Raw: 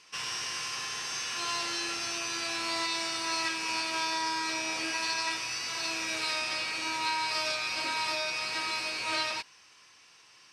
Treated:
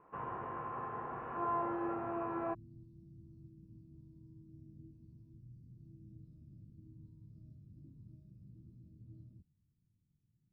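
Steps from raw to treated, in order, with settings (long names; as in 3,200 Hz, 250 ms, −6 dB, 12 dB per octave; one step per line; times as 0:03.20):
inverse Chebyshev low-pass filter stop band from 4,500 Hz, stop band 70 dB, from 0:02.53 stop band from 760 Hz
level +5.5 dB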